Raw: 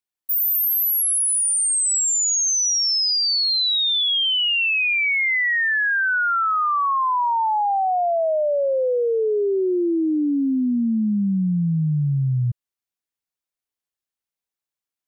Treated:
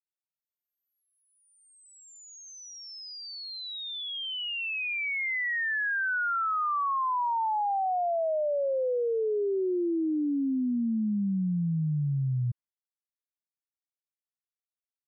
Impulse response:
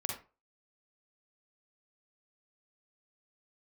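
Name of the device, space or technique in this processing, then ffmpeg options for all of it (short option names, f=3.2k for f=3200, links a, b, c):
hearing-loss simulation: -af "lowpass=2.2k,agate=range=-33dB:threshold=-41dB:ratio=3:detection=peak,volume=-7.5dB"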